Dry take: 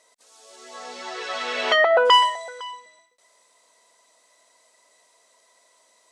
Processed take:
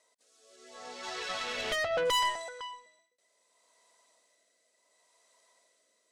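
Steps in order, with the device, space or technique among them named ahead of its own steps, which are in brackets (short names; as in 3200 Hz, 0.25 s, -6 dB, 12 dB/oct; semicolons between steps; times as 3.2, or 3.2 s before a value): 1.03–2.49 high shelf 2300 Hz +5 dB; overdriven rotary cabinet (tube stage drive 19 dB, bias 0.75; rotary speaker horn 0.7 Hz); gain -2 dB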